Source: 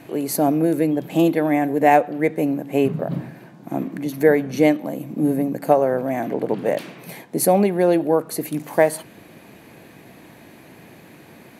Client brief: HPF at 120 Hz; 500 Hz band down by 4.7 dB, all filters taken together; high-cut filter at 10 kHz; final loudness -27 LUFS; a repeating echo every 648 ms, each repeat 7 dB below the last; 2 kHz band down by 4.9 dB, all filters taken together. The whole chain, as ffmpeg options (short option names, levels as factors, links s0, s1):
-af "highpass=120,lowpass=10000,equalizer=f=500:t=o:g=-5.5,equalizer=f=2000:t=o:g=-5.5,aecho=1:1:648|1296|1944|2592|3240:0.447|0.201|0.0905|0.0407|0.0183,volume=0.631"